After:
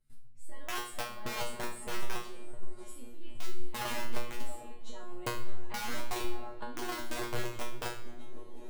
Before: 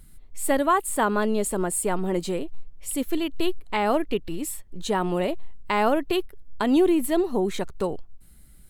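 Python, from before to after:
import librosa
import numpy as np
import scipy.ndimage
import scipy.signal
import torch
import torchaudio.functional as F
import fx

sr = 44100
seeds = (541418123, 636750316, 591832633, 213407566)

p1 = fx.peak_eq(x, sr, hz=5500.0, db=3.5, octaves=0.77)
p2 = fx.hum_notches(p1, sr, base_hz=60, count=9)
p3 = fx.doubler(p2, sr, ms=13.0, db=-5)
p4 = p3 + fx.echo_diffused(p3, sr, ms=581, feedback_pct=47, wet_db=-12.0, dry=0)
p5 = fx.auto_swell(p4, sr, attack_ms=263.0)
p6 = scipy.signal.sosfilt(scipy.signal.bessel(2, 9700.0, 'lowpass', norm='mag', fs=sr, output='sos'), p5)
p7 = fx.high_shelf(p6, sr, hz=2100.0, db=-4.0)
p8 = fx.level_steps(p7, sr, step_db=23)
p9 = (np.mod(10.0 ** (18.5 / 20.0) * p8 + 1.0, 2.0) - 1.0) / 10.0 ** (18.5 / 20.0)
p10 = fx.over_compress(p9, sr, threshold_db=-28.0, ratio=-0.5)
p11 = fx.comb_fb(p10, sr, f0_hz=120.0, decay_s=0.41, harmonics='all', damping=0.0, mix_pct=100)
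p12 = fx.room_shoebox(p11, sr, seeds[0], volume_m3=680.0, walls='mixed', distance_m=0.53)
y = p12 * 10.0 ** (5.5 / 20.0)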